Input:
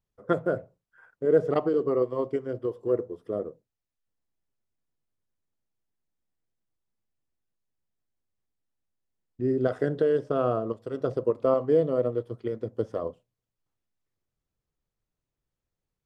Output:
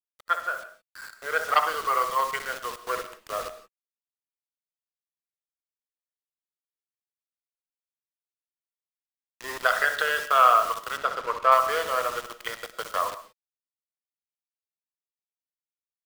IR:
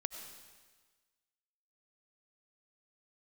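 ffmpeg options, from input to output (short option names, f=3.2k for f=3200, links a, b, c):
-filter_complex "[0:a]asplit=2[a][b];[b]adelay=64,lowpass=f=1.7k:p=1,volume=-8.5dB,asplit=2[c][d];[d]adelay=64,lowpass=f=1.7k:p=1,volume=0.15[e];[a][c][e]amix=inputs=3:normalize=0,asplit=2[f][g];[g]volume=21.5dB,asoftclip=hard,volume=-21.5dB,volume=-12dB[h];[f][h]amix=inputs=2:normalize=0,highpass=f=1.1k:w=0.5412,highpass=f=1.1k:w=1.3066,acrusher=bits=8:mix=0:aa=0.000001,asettb=1/sr,asplit=3[i][j][k];[i]atrim=end=10.974[l];[j]atrim=start=10.97:end=11.52,asetpts=PTS-STARTPTS,afade=t=in:d=0.004:c=qsin,afade=t=out:st=0.546:d=0.004:c=qsin,lowpass=f=2.5k:p=1[m];[k]atrim=start=11.516[n];[l][m]acrossfade=d=0.004:c1=hsin:c2=qsin[o];[o][n]acrossfade=d=0.004:c1=qsin:c2=hsin,asplit=2[p][q];[1:a]atrim=start_sample=2205,afade=t=out:st=0.23:d=0.01,atrim=end_sample=10584,lowshelf=f=340:g=4[r];[q][r]afir=irnorm=-1:irlink=0,volume=3.5dB[s];[p][s]amix=inputs=2:normalize=0,dynaudnorm=f=480:g=5:m=10.5dB"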